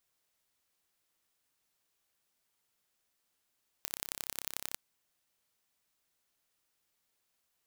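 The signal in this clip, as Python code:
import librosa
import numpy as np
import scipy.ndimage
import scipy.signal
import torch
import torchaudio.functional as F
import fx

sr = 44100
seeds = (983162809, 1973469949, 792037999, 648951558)

y = fx.impulse_train(sr, length_s=0.92, per_s=33.5, accent_every=3, level_db=-7.5)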